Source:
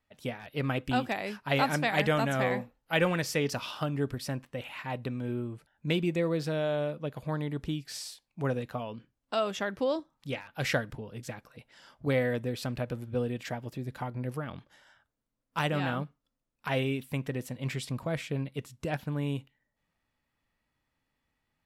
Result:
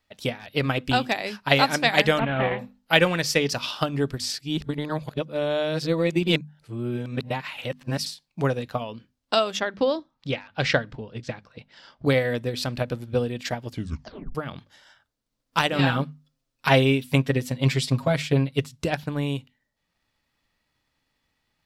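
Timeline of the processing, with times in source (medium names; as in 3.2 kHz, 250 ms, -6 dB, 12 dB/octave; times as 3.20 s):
2.19–2.59 s: CVSD coder 16 kbps
4.20–8.06 s: reverse
9.60–12.06 s: distance through air 120 m
13.68 s: tape stop 0.67 s
15.78–18.69 s: comb 7.4 ms, depth 99%
whole clip: peaking EQ 4.5 kHz +7.5 dB 1.2 oct; hum notches 50/100/150/200/250 Hz; transient shaper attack +5 dB, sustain -3 dB; trim +4.5 dB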